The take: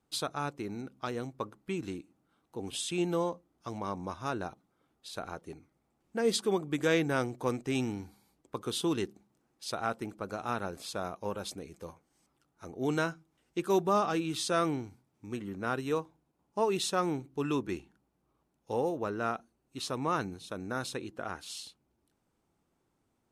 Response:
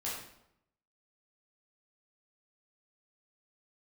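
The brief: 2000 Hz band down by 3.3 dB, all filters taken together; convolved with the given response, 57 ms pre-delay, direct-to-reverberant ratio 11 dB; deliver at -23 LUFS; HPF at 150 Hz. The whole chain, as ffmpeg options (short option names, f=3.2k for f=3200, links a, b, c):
-filter_complex "[0:a]highpass=150,equalizer=f=2k:t=o:g=-5,asplit=2[a][b];[1:a]atrim=start_sample=2205,adelay=57[c];[b][c]afir=irnorm=-1:irlink=0,volume=-13.5dB[d];[a][d]amix=inputs=2:normalize=0,volume=11.5dB"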